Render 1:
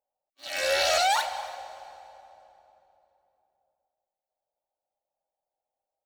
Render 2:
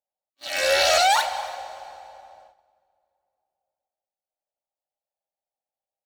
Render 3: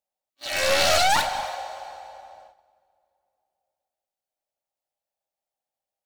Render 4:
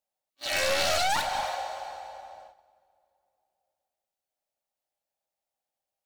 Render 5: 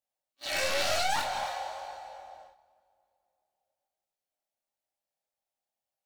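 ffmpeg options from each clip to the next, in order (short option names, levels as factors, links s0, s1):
-af "agate=range=0.251:threshold=0.00178:ratio=16:detection=peak,volume=1.78"
-af "aeval=exprs='clip(val(0),-1,0.0398)':c=same,volume=1.26"
-af "acompressor=threshold=0.0631:ratio=2.5"
-af "flanger=delay=20:depth=7.8:speed=0.99"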